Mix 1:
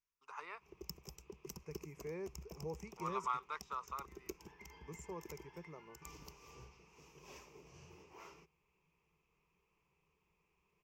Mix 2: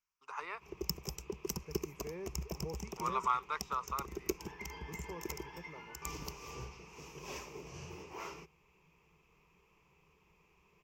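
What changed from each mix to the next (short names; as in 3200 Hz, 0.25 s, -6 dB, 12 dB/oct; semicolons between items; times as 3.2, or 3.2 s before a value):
first voice +6.0 dB; background +11.0 dB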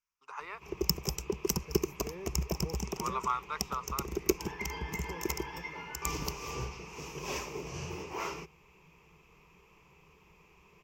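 background +8.0 dB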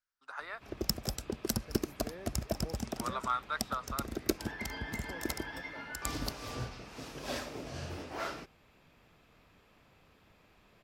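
master: remove ripple EQ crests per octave 0.76, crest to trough 14 dB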